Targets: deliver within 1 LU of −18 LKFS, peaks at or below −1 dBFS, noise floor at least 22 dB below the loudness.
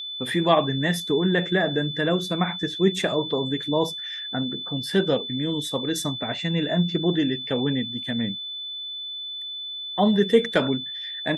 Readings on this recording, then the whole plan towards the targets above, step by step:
interfering tone 3,500 Hz; level of the tone −31 dBFS; integrated loudness −24.5 LKFS; sample peak −4.5 dBFS; target loudness −18.0 LKFS
→ notch filter 3,500 Hz, Q 30
level +6.5 dB
brickwall limiter −1 dBFS

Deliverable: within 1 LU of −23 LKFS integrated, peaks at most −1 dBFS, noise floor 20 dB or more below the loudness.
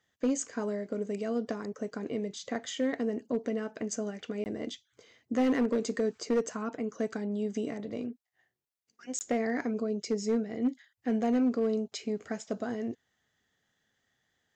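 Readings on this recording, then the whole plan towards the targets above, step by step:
share of clipped samples 0.7%; peaks flattened at −21.5 dBFS; number of dropouts 2; longest dropout 19 ms; integrated loudness −33.0 LKFS; sample peak −21.5 dBFS; target loudness −23.0 LKFS
→ clipped peaks rebuilt −21.5 dBFS
repair the gap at 0:04.44/0:09.19, 19 ms
level +10 dB

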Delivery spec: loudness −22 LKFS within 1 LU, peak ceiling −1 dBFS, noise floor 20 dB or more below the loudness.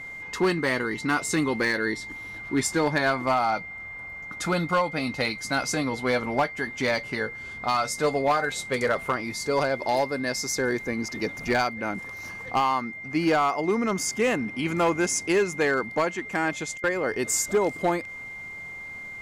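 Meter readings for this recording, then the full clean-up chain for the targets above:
share of clipped samples 0.7%; peaks flattened at −16.0 dBFS; interfering tone 2,100 Hz; level of the tone −36 dBFS; integrated loudness −26.0 LKFS; sample peak −16.0 dBFS; target loudness −22.0 LKFS
→ clipped peaks rebuilt −16 dBFS
notch filter 2,100 Hz, Q 30
level +4 dB

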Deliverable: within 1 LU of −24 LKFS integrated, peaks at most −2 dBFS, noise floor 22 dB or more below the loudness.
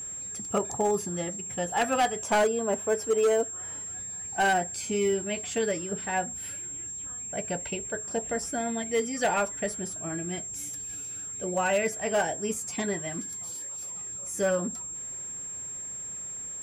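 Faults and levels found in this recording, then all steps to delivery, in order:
share of clipped samples 0.6%; peaks flattened at −19.0 dBFS; interfering tone 7,500 Hz; level of the tone −35 dBFS; integrated loudness −29.5 LKFS; sample peak −19.0 dBFS; target loudness −24.0 LKFS
→ clipped peaks rebuilt −19 dBFS
notch filter 7,500 Hz, Q 30
level +5.5 dB

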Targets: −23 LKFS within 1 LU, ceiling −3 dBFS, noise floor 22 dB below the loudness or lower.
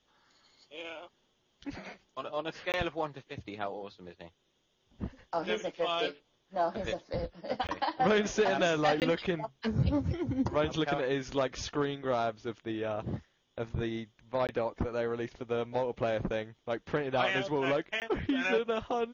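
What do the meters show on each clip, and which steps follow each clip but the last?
number of dropouts 5; longest dropout 18 ms; integrated loudness −32.5 LKFS; sample peak −16.5 dBFS; target loudness −23.0 LKFS
→ repair the gap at 0:02.72/0:07.67/0:09.00/0:14.47/0:18.00, 18 ms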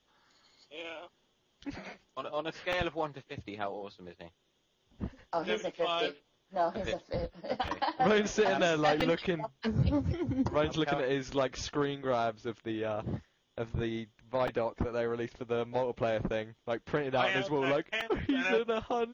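number of dropouts 0; integrated loudness −32.5 LKFS; sample peak −16.5 dBFS; target loudness −23.0 LKFS
→ level +9.5 dB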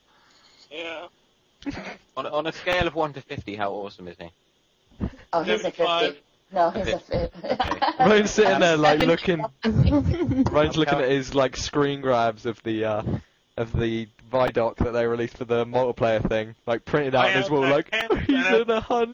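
integrated loudness −23.0 LKFS; sample peak −7.0 dBFS; background noise floor −64 dBFS

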